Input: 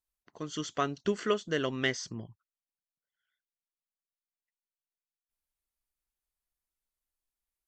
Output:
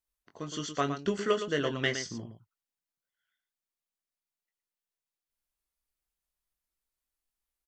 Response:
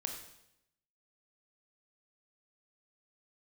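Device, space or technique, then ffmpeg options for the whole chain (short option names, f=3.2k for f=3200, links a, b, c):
slapback doubling: -filter_complex "[0:a]asplit=3[a][b][c];[b]adelay=21,volume=-7dB[d];[c]adelay=115,volume=-9dB[e];[a][d][e]amix=inputs=3:normalize=0"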